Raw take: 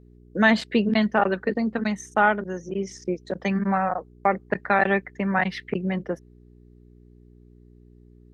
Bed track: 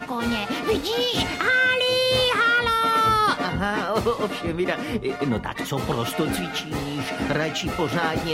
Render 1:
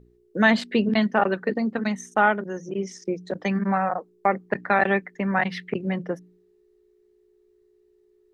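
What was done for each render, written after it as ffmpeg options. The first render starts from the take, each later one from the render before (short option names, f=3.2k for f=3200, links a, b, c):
-af "bandreject=f=60:t=h:w=4,bandreject=f=120:t=h:w=4,bandreject=f=180:t=h:w=4,bandreject=f=240:t=h:w=4,bandreject=f=300:t=h:w=4"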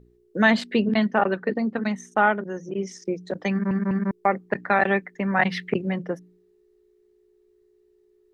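-filter_complex "[0:a]asettb=1/sr,asplit=3[a][b][c];[a]atrim=end=0.804[d];[b]atrim=start=0.8:end=2.78,asetpts=PTS-STARTPTS,afade=t=in:d=0.004:c=qsin,afade=t=out:st=1.976:d=0.004:c=qsin,highshelf=f=5.5k:g=-7[e];[c]atrim=start=2.776[f];[d][e]acrossfade=d=0.004:c1=hsin:c2=qsin[g];[g][f]acrossfade=d=0.004:c1=qsin:c2=hsin,asplit=6[h][i][j][k][l][m];[h]atrim=end=3.712[n];[i]atrim=start=3.508:end=3.712[o];[j]atrim=start=3.508:end=3.712[p];[k]atrim=start=4.108:end=5.392[q];[l]atrim=start=5.388:end=5.822,asetpts=PTS-STARTPTS,volume=3.5dB[r];[m]atrim=start=5.818[s];[n][o]acrossfade=d=0.004:c1=hsin:c2=hsin[t];[t][p]acrossfade=d=0.004:c1=hsin:c2=hsin[u];[u][q]acrossfade=d=0.004:c1=hsin:c2=hsin[v];[v][r]acrossfade=d=0.004:c1=hsin:c2=hsin[w];[w][s]acrossfade=d=0.004:c1=hsin:c2=hsin"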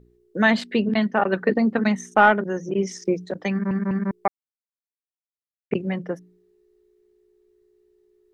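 -filter_complex "[0:a]asplit=3[a][b][c];[a]afade=t=out:st=1.32:d=0.02[d];[b]acontrast=31,afade=t=in:st=1.32:d=0.02,afade=t=out:st=3.24:d=0.02[e];[c]afade=t=in:st=3.24:d=0.02[f];[d][e][f]amix=inputs=3:normalize=0,asplit=3[g][h][i];[g]atrim=end=4.28,asetpts=PTS-STARTPTS,afade=t=out:st=4.276:d=0.004:c=hsin[j];[h]atrim=start=4.28:end=5.71,asetpts=PTS-STARTPTS,volume=0[k];[i]atrim=start=5.71,asetpts=PTS-STARTPTS,afade=t=in:d=0.004:c=hsin[l];[j][k][l]concat=n=3:v=0:a=1"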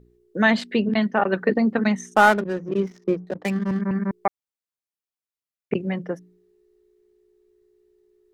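-filter_complex "[0:a]asettb=1/sr,asplit=3[a][b][c];[a]atrim=end=2.164[d];[b]atrim=start=2.16:end=3.81,asetpts=PTS-STARTPTS,afade=t=in:d=0.004:c=qsin,afade=t=out:st=1.646:d=0.004:c=qsin,adynamicsmooth=sensitivity=7:basefreq=610[e];[c]atrim=start=3.806[f];[d][e]acrossfade=d=0.004:c1=hsin:c2=qsin[g];[g][f]acrossfade=d=0.004:c1=qsin:c2=hsin"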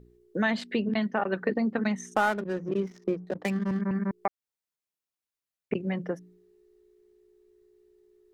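-af "acompressor=threshold=-29dB:ratio=2"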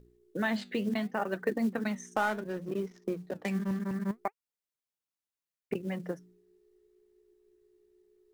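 -af "flanger=delay=1.8:depth=9.6:regen=77:speed=0.69:shape=triangular,acrusher=bits=7:mode=log:mix=0:aa=0.000001"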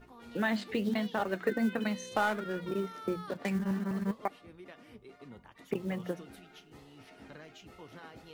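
-filter_complex "[1:a]volume=-26.5dB[a];[0:a][a]amix=inputs=2:normalize=0"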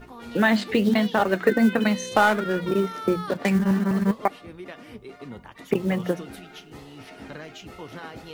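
-af "volume=11dB"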